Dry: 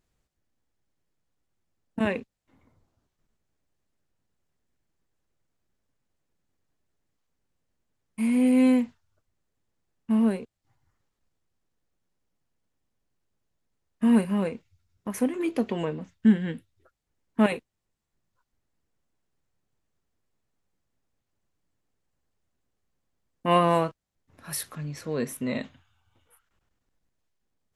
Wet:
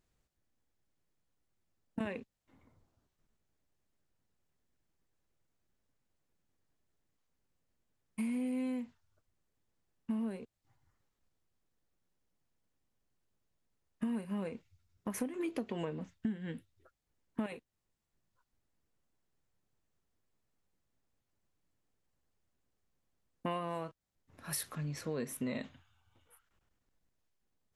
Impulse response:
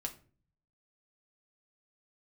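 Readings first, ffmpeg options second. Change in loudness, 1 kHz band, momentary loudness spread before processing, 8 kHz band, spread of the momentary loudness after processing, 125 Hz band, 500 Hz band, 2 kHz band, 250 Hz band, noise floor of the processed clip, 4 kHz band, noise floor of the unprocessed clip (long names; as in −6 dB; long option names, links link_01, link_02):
−13.5 dB, −15.5 dB, 15 LU, −6.0 dB, 12 LU, −10.5 dB, −13.0 dB, −12.5 dB, −14.0 dB, −84 dBFS, −11.0 dB, −81 dBFS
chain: -af "acompressor=threshold=-30dB:ratio=12,volume=-3dB"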